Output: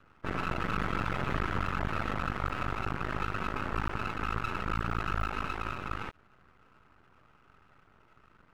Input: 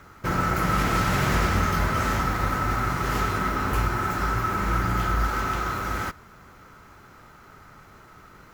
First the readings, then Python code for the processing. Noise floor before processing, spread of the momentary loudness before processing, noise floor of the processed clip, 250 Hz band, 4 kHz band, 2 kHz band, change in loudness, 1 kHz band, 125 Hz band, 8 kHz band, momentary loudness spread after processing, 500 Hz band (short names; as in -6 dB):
-50 dBFS, 5 LU, -63 dBFS, -9.0 dB, -9.5 dB, -8.0 dB, -9.5 dB, -9.0 dB, -10.0 dB, -19.5 dB, 4 LU, -8.5 dB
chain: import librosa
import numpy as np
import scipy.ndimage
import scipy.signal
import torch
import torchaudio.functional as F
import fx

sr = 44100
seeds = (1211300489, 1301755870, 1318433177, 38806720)

y = fx.cheby_harmonics(x, sr, harmonics=(6,), levels_db=(-10,), full_scale_db=-10.0)
y = fx.spec_topn(y, sr, count=64)
y = np.maximum(y, 0.0)
y = y * librosa.db_to_amplitude(-9.0)